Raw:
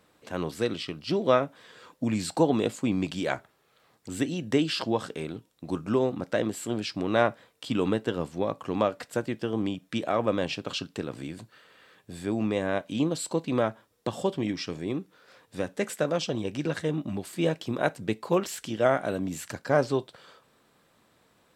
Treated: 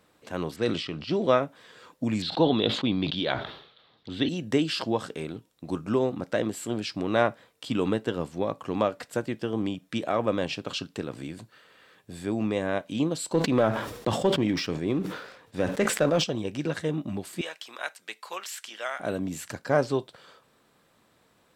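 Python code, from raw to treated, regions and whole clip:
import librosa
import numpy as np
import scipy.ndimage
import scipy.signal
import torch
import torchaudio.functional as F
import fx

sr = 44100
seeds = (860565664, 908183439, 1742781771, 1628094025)

y = fx.chain(x, sr, fx.env_lowpass(base_hz=2600.0, full_db=-22.0),
    fx.brickwall_lowpass(high_hz=11000.0),
    fx.sustainer(db_per_s=66.0), at=(0.56, 1.31))
y = fx.chain(y, sr, fx.curve_eq(hz=(2500.0, 3600.0, 7600.0), db=(0, 13, -24)),
    fx.sustainer(db_per_s=84.0), at=(2.22, 4.29))
y = fx.chain(y, sr, fx.high_shelf(hz=6300.0, db=-9.0),
    fx.leveller(passes=1),
    fx.sustainer(db_per_s=66.0), at=(13.33, 16.24))
y = fx.chain(y, sr, fx.highpass(hz=1300.0, slope=12),
    fx.band_squash(depth_pct=40), at=(17.41, 19.0))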